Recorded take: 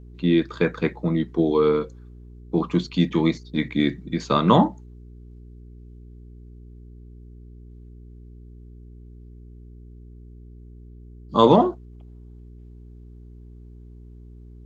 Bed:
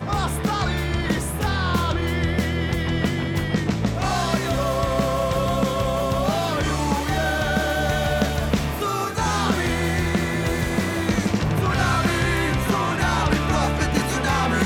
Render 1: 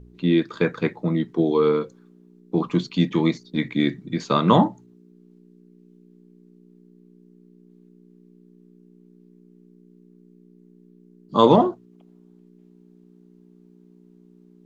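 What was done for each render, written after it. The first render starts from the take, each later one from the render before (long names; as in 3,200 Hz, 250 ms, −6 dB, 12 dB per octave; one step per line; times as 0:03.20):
hum removal 60 Hz, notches 2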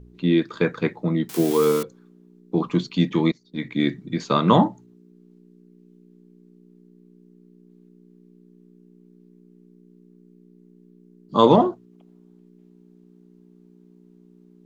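0:01.29–0:01.83: spike at every zero crossing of −18.5 dBFS
0:03.32–0:03.86: fade in, from −22 dB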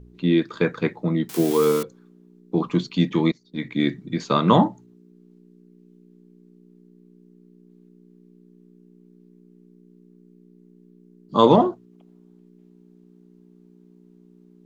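no processing that can be heard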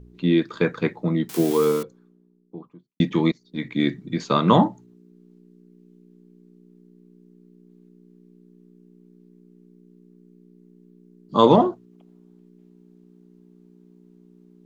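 0:01.33–0:03.00: fade out and dull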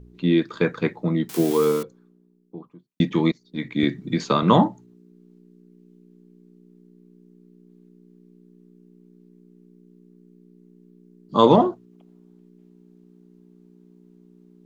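0:03.83–0:04.43: multiband upward and downward compressor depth 70%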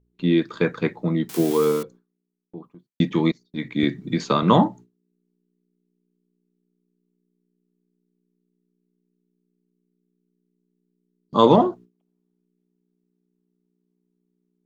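noise gate with hold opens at −38 dBFS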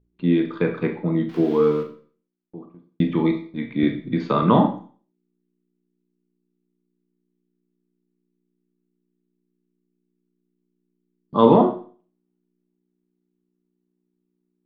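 high-frequency loss of the air 330 metres
four-comb reverb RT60 0.42 s, combs from 27 ms, DRR 5 dB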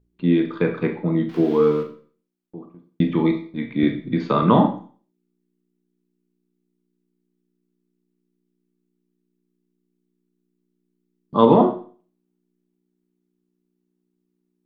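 level +1 dB
brickwall limiter −3 dBFS, peak gain reduction 3 dB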